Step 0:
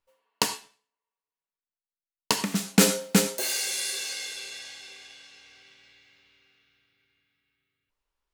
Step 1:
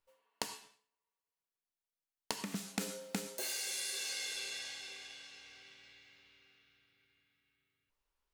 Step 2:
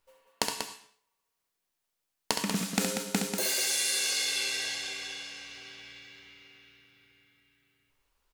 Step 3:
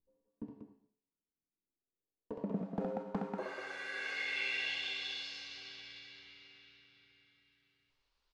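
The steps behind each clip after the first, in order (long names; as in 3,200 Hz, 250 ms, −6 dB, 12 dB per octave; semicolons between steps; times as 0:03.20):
downward compressor 12 to 1, threshold −33 dBFS, peak gain reduction 20.5 dB; level −2.5 dB
loudspeakers that aren't time-aligned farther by 23 metres −6 dB, 65 metres −7 dB; level +9 dB
wrap-around overflow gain 17 dB; low-pass filter sweep 270 Hz → 4,500 Hz, 0:01.51–0:05.34; level −6.5 dB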